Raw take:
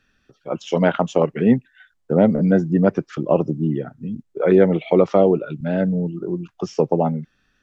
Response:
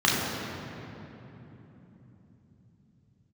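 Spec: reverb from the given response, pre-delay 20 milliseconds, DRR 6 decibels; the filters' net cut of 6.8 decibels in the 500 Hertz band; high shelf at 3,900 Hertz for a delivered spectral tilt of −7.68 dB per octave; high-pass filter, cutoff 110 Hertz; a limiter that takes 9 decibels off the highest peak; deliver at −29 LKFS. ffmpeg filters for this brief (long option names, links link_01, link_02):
-filter_complex "[0:a]highpass=110,equalizer=frequency=500:width_type=o:gain=-8.5,highshelf=frequency=3900:gain=-3,alimiter=limit=-14dB:level=0:latency=1,asplit=2[link_01][link_02];[1:a]atrim=start_sample=2205,adelay=20[link_03];[link_02][link_03]afir=irnorm=-1:irlink=0,volume=-23.5dB[link_04];[link_01][link_04]amix=inputs=2:normalize=0,volume=-5.5dB"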